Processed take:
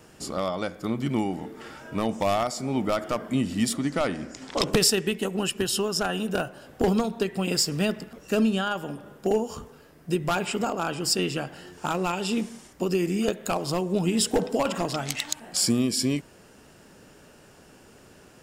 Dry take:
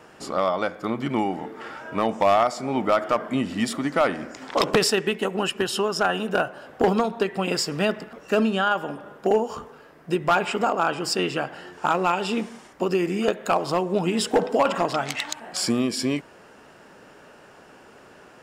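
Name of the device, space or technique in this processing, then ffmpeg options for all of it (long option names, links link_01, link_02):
smiley-face EQ: -filter_complex "[0:a]lowshelf=frequency=120:gain=8.5,equalizer=frequency=1100:width_type=o:width=2.8:gain=-8,highshelf=frequency=5900:gain=8,asettb=1/sr,asplit=3[link_01][link_02][link_03];[link_01]atrim=end=3.744[link_04];[link_02]atrim=start=3.74:end=4.67,asetpts=PTS-STARTPTS,afade=type=in:duration=0.004:curve=qsin,afade=type=out:start_time=0.926:duration=0.004:curve=qsin,lowpass=9300[link_05];[link_03]atrim=start=4.666[link_06];[link_04][link_05]acrossfade=duration=0.004:curve1=hsin:curve2=qsin[link_07];[link_07][link_06]acrossfade=duration=0.004:curve1=qsin:curve2=hsin"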